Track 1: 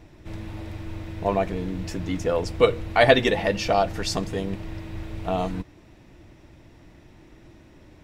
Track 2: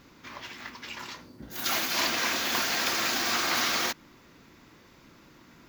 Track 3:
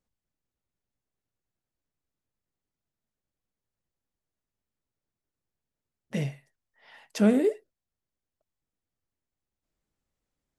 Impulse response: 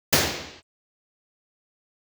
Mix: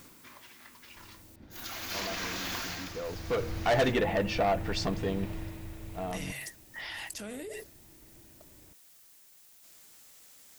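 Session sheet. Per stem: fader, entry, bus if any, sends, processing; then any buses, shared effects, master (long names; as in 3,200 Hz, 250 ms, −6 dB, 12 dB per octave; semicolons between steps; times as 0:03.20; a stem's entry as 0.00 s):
0:01.58 −22.5 dB → 0:02.05 −14.5 dB → 0:02.87 −14.5 dB → 0:03.55 −2 dB → 0:05.32 −2 dB → 0:05.71 −9 dB, 0.70 s, no send, treble cut that deepens with the level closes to 2,600 Hz, closed at −19.5 dBFS; soft clipping −19 dBFS, distortion −8 dB
+0.5 dB, 0.00 s, no send, downward compressor 12 to 1, threshold −33 dBFS, peak gain reduction 10.5 dB; automatic ducking −13 dB, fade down 0.40 s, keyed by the third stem
−16.5 dB, 0.00 s, muted 0:01.36–0:03.04, no send, spectral tilt +4 dB per octave; envelope flattener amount 100%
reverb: not used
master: no processing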